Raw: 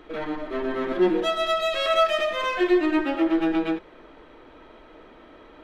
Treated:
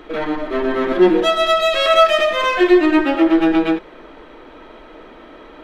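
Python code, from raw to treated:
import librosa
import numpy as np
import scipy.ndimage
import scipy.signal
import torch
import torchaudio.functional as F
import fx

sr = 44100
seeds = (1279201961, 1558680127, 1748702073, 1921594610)

y = fx.peak_eq(x, sr, hz=89.0, db=-14.0, octaves=0.54)
y = F.gain(torch.from_numpy(y), 8.5).numpy()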